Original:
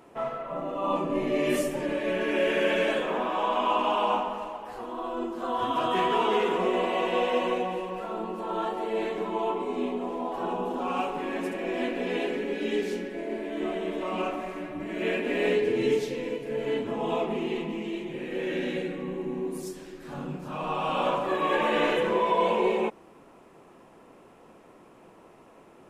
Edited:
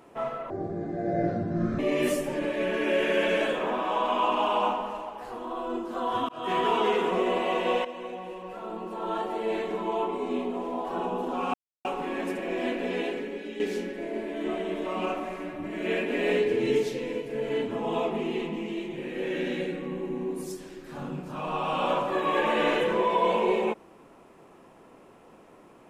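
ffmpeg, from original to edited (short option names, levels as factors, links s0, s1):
-filter_complex "[0:a]asplit=7[s0][s1][s2][s3][s4][s5][s6];[s0]atrim=end=0.504[s7];[s1]atrim=start=0.5:end=1.26,asetpts=PTS-STARTPTS,asetrate=26019,aresample=44100[s8];[s2]atrim=start=1.256:end=5.76,asetpts=PTS-STARTPTS,afade=t=out:st=4.5:d=0.004:c=hsin[s9];[s3]atrim=start=5.76:end=7.32,asetpts=PTS-STARTPTS,afade=t=in:d=0.31,afade=t=out:st=1.556:d=0.004:c=hsin:silence=0.199526[s10];[s4]atrim=start=7.32:end=11.01,asetpts=PTS-STARTPTS,afade=t=in:d=1.41:silence=0.199526,afade=t=out:st=3.686:d=0.004:c=hsin,apad=pad_dur=0.31[s11];[s5]atrim=start=11.01:end=12.76,asetpts=PTS-STARTPTS,afade=t=in:d=0.004:c=hsin,afade=t=out:st=1.06:d=0.69:silence=0.298538[s12];[s6]atrim=start=12.76,asetpts=PTS-STARTPTS,afade=t=in:d=0.004:c=hsin:silence=0.298538[s13];[s7][s8]acrossfade=d=0.004:c1=hsin:c2=hsin[s14];[s9][s10][s11][s12][s13]concat=n=5:v=0:a=1[s15];[s14][s15]acrossfade=d=0.004:c1=hsin:c2=hsin"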